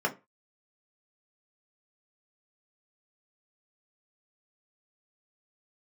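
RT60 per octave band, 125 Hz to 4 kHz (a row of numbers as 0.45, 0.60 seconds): 0.30, 0.25, 0.25, 0.25, 0.25, 0.20 seconds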